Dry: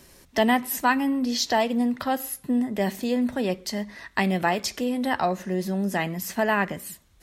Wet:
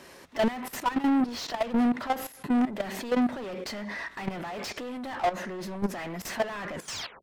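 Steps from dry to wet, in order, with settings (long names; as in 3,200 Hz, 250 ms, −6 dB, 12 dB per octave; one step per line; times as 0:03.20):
turntable brake at the end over 0.49 s
mid-hump overdrive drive 35 dB, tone 1,400 Hz, clips at −7 dBFS
output level in coarse steps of 14 dB
level −8 dB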